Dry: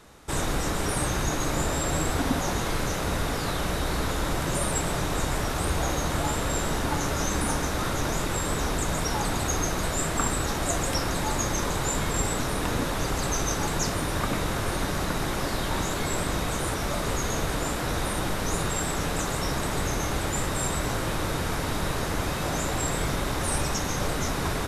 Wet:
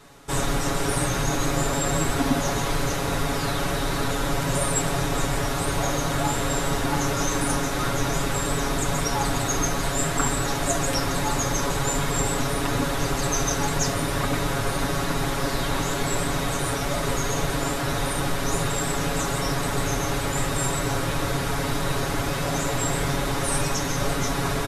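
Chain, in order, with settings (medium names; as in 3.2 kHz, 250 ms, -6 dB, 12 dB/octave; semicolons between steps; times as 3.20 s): comb 7.2 ms, depth 93%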